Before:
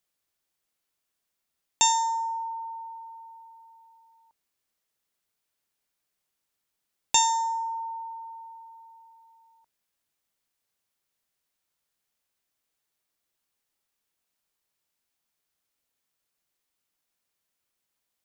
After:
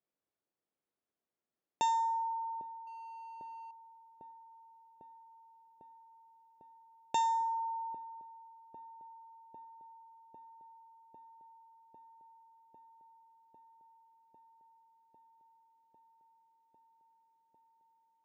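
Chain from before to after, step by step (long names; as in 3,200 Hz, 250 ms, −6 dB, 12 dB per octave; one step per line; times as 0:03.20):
hum removal 263.1 Hz, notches 10
0:02.87–0:03.71: power curve on the samples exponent 0.35
resonant band-pass 350 Hz, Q 0.73
delay with a low-pass on its return 800 ms, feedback 83%, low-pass 510 Hz, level −11 dB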